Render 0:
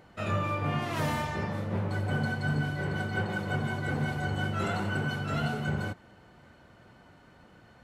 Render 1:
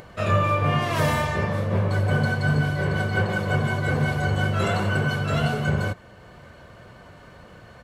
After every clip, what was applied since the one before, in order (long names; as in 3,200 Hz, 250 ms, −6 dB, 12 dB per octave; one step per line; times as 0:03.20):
comb filter 1.8 ms, depth 40%
upward compression, threshold −48 dBFS
level +7.5 dB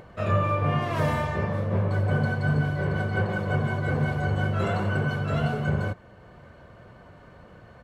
high-shelf EQ 2,600 Hz −10.5 dB
level −2 dB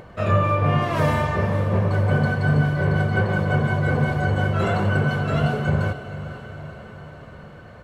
feedback delay with all-pass diffusion 487 ms, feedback 61%, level −13 dB
level +4.5 dB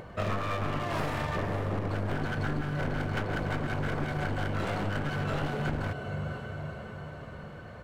wavefolder on the positive side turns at −22 dBFS
downward compressor, threshold −25 dBFS, peak gain reduction 10.5 dB
level −2 dB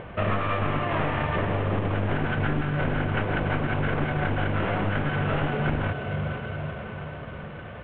variable-slope delta modulation 16 kbit/s
level +6 dB